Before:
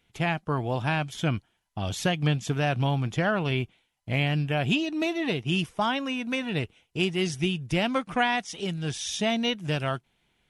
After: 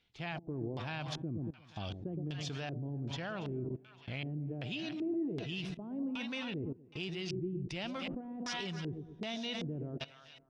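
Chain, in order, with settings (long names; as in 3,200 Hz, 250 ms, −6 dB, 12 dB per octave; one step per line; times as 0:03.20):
echo with a time of its own for lows and highs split 820 Hz, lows 116 ms, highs 282 ms, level −11.5 dB
output level in coarse steps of 19 dB
auto-filter low-pass square 1.3 Hz 350–4,600 Hz
level −2 dB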